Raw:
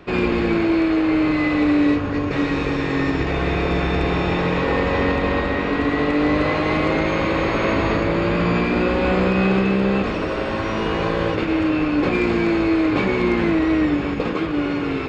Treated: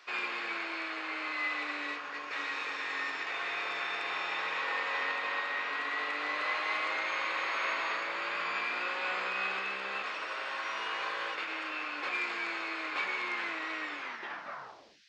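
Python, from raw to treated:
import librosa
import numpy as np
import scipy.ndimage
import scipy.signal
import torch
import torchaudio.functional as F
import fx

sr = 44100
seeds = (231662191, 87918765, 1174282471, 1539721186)

y = fx.tape_stop_end(x, sr, length_s=1.12)
y = fx.dmg_noise_band(y, sr, seeds[0], low_hz=1600.0, high_hz=5500.0, level_db=-57.0)
y = scipy.signal.sosfilt(scipy.signal.cheby1(2, 1.0, 1300.0, 'highpass', fs=sr, output='sos'), y)
y = y * 10.0 ** (-6.5 / 20.0)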